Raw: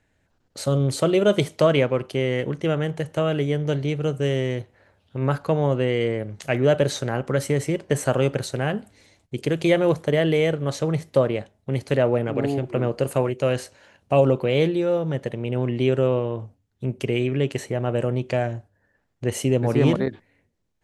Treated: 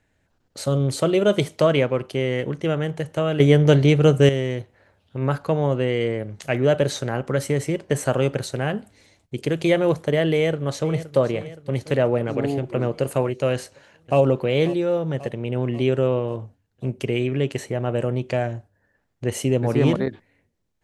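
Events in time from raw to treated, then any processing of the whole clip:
0:03.40–0:04.29: clip gain +9 dB
0:10.32–0:11.18: delay throw 520 ms, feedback 60%, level −14.5 dB
0:13.54–0:14.19: delay throw 540 ms, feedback 65%, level −15.5 dB

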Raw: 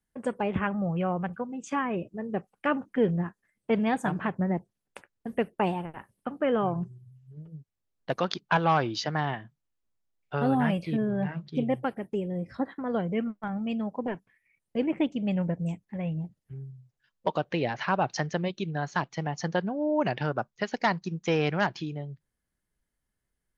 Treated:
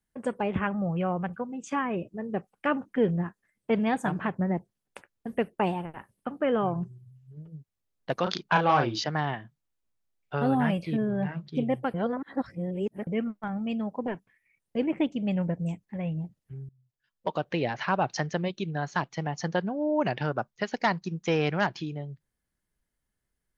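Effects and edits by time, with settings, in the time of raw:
0:08.23–0:09.04: double-tracking delay 34 ms −4.5 dB
0:11.94–0:13.07: reverse
0:16.69–0:17.51: fade in, from −22.5 dB

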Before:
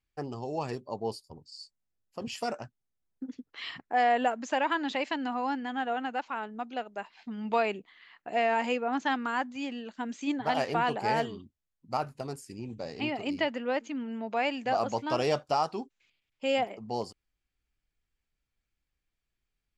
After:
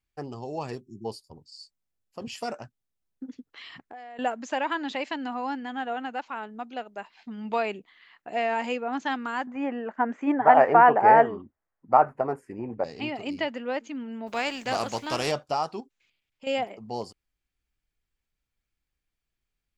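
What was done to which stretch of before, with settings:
0:00.82–0:01.05: time-frequency box erased 400–5,200 Hz
0:03.47–0:04.19: downward compressor 8 to 1, threshold −40 dBFS
0:09.47–0:12.84: drawn EQ curve 140 Hz 0 dB, 760 Hz +14 dB, 1,900 Hz +9 dB, 4,000 Hz −20 dB, 9,900 Hz −14 dB
0:14.26–0:15.30: compressing power law on the bin magnitudes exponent 0.65
0:15.80–0:16.47: downward compressor 2 to 1, threshold −47 dBFS

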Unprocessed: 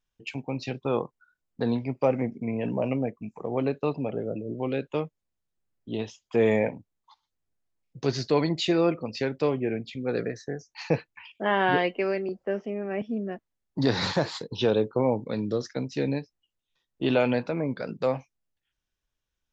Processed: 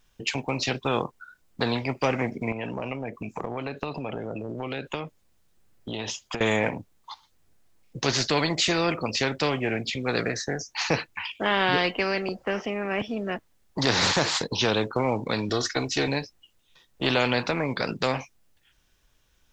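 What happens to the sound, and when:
0:02.52–0:06.41: downward compressor 5 to 1, threshold −37 dBFS
0:15.49–0:16.08: comb filter 2.7 ms, depth 78%
whole clip: every bin compressed towards the loudest bin 2 to 1; level +2 dB

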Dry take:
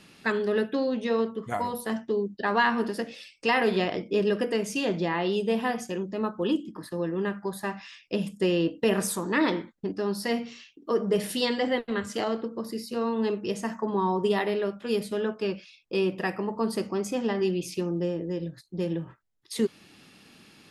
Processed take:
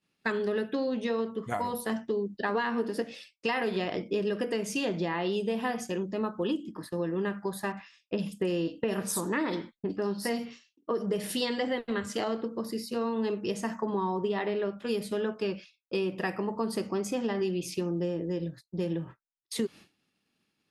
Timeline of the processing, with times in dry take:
0:02.49–0:03.02: hollow resonant body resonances 280/450 Hz, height 8 dB
0:07.72–0:11.06: multiband delay without the direct sound lows, highs 50 ms, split 3,200 Hz
0:14.19–0:14.78: high-frequency loss of the air 120 metres
whole clip: downward expander −39 dBFS; downward compressor, threshold −26 dBFS

